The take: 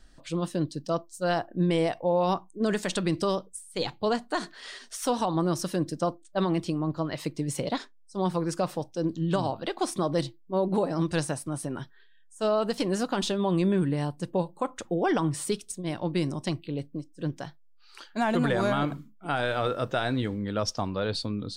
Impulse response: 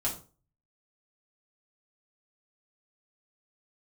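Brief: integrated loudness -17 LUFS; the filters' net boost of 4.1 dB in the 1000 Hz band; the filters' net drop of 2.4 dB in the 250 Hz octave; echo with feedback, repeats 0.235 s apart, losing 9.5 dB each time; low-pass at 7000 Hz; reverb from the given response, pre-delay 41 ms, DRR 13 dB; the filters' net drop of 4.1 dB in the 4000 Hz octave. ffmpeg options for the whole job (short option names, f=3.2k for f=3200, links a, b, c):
-filter_complex "[0:a]lowpass=7k,equalizer=f=250:t=o:g=-4,equalizer=f=1k:t=o:g=6,equalizer=f=4k:t=o:g=-5,aecho=1:1:235|470|705|940:0.335|0.111|0.0365|0.012,asplit=2[a][b];[1:a]atrim=start_sample=2205,adelay=41[c];[b][c]afir=irnorm=-1:irlink=0,volume=-18dB[d];[a][d]amix=inputs=2:normalize=0,volume=11dB"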